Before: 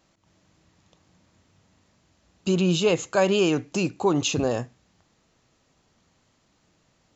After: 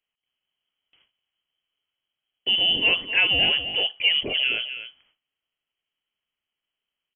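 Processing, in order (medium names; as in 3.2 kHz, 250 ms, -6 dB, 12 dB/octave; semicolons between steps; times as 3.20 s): frequency inversion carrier 3.2 kHz; delay 257 ms -10.5 dB; gate with hold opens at -47 dBFS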